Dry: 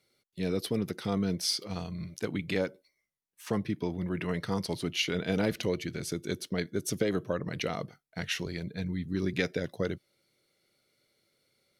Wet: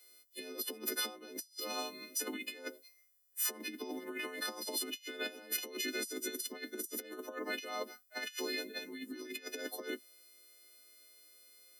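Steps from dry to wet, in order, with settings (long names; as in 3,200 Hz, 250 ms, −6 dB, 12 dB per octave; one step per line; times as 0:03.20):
every partial snapped to a pitch grid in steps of 3 semitones
compressor whose output falls as the input rises −35 dBFS, ratio −0.5
Butterworth high-pass 230 Hz 96 dB per octave
high-shelf EQ 11,000 Hz +9.5 dB
level −4.5 dB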